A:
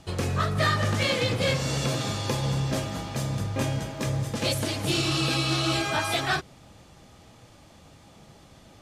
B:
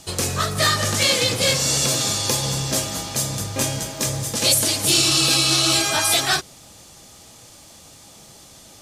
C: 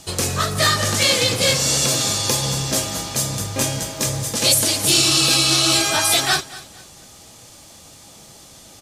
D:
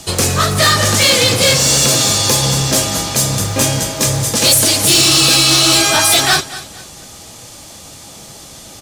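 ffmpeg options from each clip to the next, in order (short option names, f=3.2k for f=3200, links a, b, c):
-af "bass=f=250:g=-4,treble=f=4k:g=15,volume=3.5dB"
-af "aecho=1:1:233|466|699:0.119|0.0368|0.0114,volume=1.5dB"
-filter_complex "[0:a]acrossover=split=160[a][b];[a]acrusher=bits=2:mode=log:mix=0:aa=0.000001[c];[c][b]amix=inputs=2:normalize=0,asoftclip=type=tanh:threshold=-13.5dB,volume=8.5dB"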